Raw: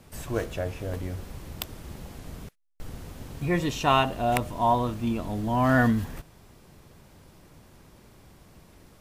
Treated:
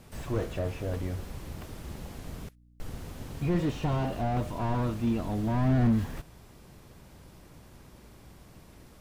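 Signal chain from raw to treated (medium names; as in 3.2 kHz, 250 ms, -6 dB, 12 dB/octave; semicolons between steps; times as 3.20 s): hum 60 Hz, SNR 30 dB; slew-rate limiter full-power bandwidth 21 Hz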